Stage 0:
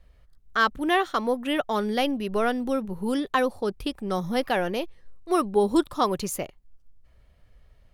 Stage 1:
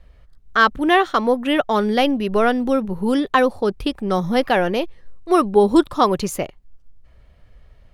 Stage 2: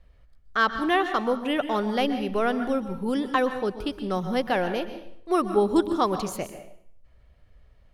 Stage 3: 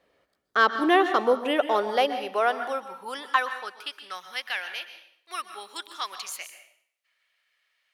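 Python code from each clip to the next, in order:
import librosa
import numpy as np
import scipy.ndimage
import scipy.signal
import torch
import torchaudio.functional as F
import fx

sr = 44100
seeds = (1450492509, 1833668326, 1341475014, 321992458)

y1 = fx.high_shelf(x, sr, hz=6600.0, db=-8.5)
y1 = y1 * librosa.db_to_amplitude(7.5)
y2 = fx.rev_plate(y1, sr, seeds[0], rt60_s=0.64, hf_ratio=0.9, predelay_ms=110, drr_db=9.5)
y2 = y2 * librosa.db_to_amplitude(-7.5)
y3 = fx.filter_sweep_highpass(y2, sr, from_hz=350.0, to_hz=2100.0, start_s=1.15, end_s=4.47, q=1.3)
y3 = y3 * librosa.db_to_amplitude(1.5)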